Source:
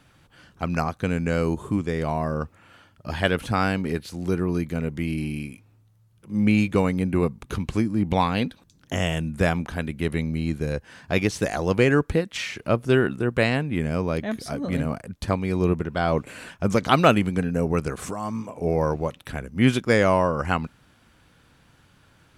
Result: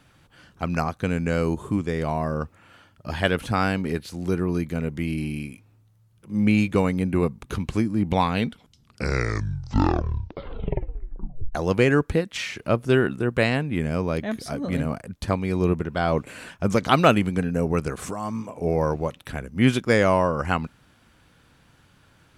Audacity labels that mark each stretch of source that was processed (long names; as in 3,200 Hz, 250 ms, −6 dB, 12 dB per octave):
8.240000	8.240000	tape stop 3.31 s